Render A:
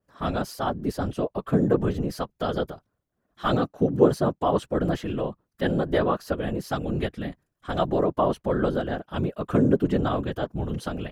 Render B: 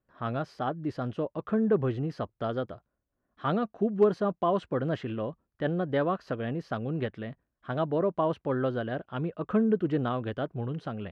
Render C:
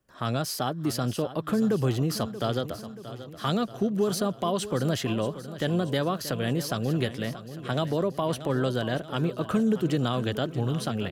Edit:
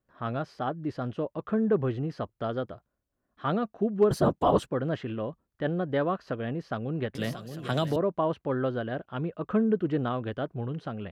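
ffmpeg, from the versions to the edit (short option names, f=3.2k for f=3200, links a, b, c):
-filter_complex "[1:a]asplit=3[a][b][c];[a]atrim=end=4.112[d];[0:a]atrim=start=4.108:end=4.672[e];[b]atrim=start=4.668:end=7.152[f];[2:a]atrim=start=7.148:end=7.962[g];[c]atrim=start=7.958[h];[d][e]acrossfade=d=0.004:c1=hsin:c2=hsin[i];[i][f]acrossfade=d=0.004:c1=hsin:c2=hsin[j];[j][g]acrossfade=d=0.004:c1=hsin:c2=hsin[k];[k][h]acrossfade=d=0.004:c1=hsin:c2=hsin"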